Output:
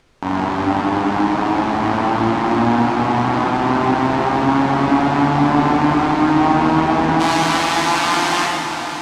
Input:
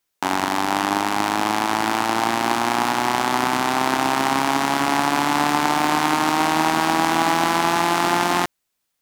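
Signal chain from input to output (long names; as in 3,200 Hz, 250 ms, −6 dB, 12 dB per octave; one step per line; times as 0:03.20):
spectral tilt −3 dB per octave, from 0:07.19 +3 dB per octave
upward compression, threshold −35 dBFS
high-frequency loss of the air 75 metres
delay that swaps between a low-pass and a high-pass 377 ms, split 890 Hz, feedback 77%, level −8 dB
dense smooth reverb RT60 2.1 s, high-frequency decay 0.9×, DRR −3 dB
level −3 dB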